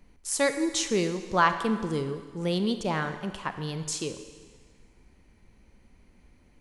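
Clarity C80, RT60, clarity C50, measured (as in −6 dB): 10.5 dB, 1.6 s, 9.5 dB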